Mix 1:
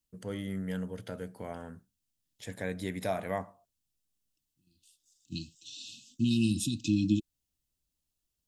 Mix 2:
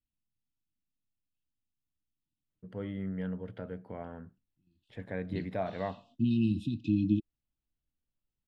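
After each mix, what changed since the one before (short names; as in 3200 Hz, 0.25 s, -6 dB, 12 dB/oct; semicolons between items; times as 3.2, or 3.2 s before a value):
first voice: entry +2.50 s; master: add air absorption 460 m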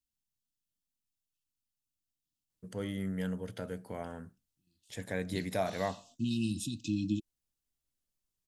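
second voice -5.5 dB; master: remove air absorption 460 m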